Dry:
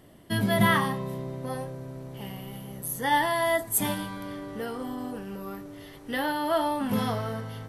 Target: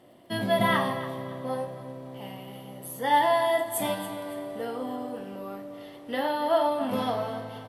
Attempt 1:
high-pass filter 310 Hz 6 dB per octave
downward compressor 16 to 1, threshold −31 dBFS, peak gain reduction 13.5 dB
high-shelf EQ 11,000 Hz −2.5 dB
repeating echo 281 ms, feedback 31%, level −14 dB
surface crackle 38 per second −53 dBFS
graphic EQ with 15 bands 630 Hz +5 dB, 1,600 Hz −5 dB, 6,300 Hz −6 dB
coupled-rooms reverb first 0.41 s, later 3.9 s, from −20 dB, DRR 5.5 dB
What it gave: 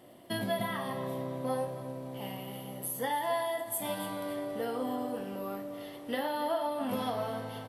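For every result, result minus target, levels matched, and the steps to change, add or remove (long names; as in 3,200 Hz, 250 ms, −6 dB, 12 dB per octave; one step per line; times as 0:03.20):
downward compressor: peak gain reduction +13.5 dB; 8,000 Hz band +5.5 dB
remove: downward compressor 16 to 1, threshold −31 dBFS, peak gain reduction 13.5 dB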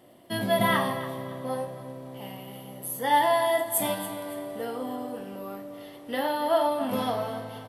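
8,000 Hz band +5.0 dB
change: high-shelf EQ 11,000 Hz −14.5 dB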